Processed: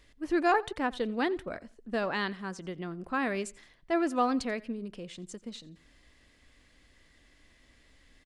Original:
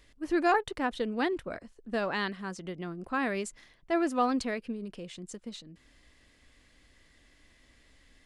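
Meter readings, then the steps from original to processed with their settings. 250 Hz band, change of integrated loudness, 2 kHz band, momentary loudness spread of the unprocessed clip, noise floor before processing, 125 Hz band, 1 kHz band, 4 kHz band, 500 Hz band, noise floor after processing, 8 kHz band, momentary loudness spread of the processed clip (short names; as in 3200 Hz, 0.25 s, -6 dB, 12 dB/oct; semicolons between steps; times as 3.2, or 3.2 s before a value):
0.0 dB, 0.0 dB, 0.0 dB, 16 LU, -63 dBFS, 0.0 dB, 0.0 dB, -0.5 dB, 0.0 dB, -63 dBFS, -1.5 dB, 16 LU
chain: high shelf 9100 Hz -3.5 dB; on a send: feedback echo 87 ms, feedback 31%, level -22 dB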